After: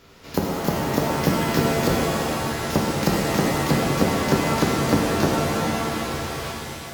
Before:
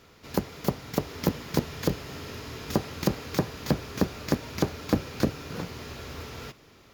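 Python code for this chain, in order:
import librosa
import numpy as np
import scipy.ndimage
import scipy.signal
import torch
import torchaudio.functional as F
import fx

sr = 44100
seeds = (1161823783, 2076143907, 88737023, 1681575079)

y = fx.reverse_delay(x, sr, ms=623, wet_db=-14.0)
y = fx.rev_shimmer(y, sr, seeds[0], rt60_s=2.3, semitones=7, shimmer_db=-2, drr_db=-2.0)
y = y * librosa.db_to_amplitude(2.5)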